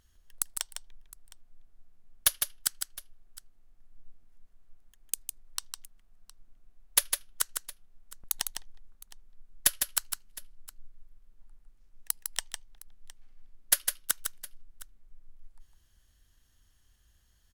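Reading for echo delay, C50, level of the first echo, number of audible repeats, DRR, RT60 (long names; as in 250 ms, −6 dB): 155 ms, no reverb audible, −6.0 dB, 2, no reverb audible, no reverb audible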